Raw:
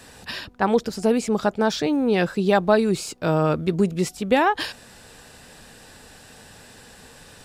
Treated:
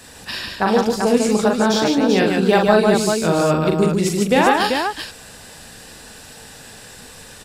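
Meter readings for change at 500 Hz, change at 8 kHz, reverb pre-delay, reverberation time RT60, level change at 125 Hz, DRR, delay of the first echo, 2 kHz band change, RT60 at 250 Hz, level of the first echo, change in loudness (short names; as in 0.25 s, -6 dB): +5.0 dB, +8.5 dB, none, none, +4.0 dB, none, 42 ms, +6.0 dB, none, -4.0 dB, +5.0 dB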